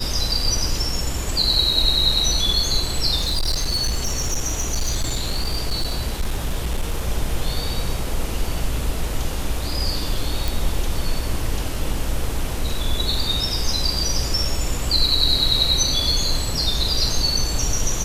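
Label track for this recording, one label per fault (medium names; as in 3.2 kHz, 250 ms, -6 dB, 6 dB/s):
3.170000	7.090000	clipped -17 dBFS
10.480000	10.480000	pop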